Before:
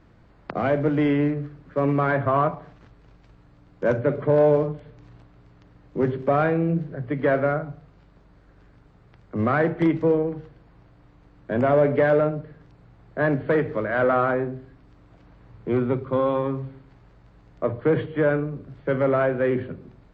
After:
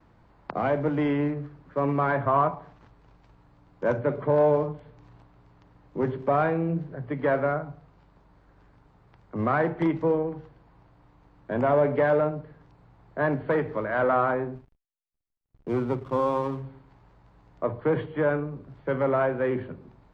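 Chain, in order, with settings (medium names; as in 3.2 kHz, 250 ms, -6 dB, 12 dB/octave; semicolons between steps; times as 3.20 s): peaking EQ 920 Hz +7.5 dB 0.63 oct; 14.55–16.65 s: hysteresis with a dead band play -36 dBFS; gate with hold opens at -46 dBFS; trim -4.5 dB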